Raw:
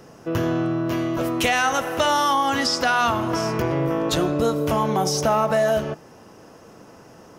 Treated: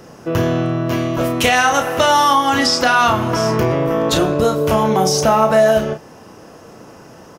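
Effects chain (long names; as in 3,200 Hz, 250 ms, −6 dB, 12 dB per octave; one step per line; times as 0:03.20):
double-tracking delay 32 ms −7 dB
level +5.5 dB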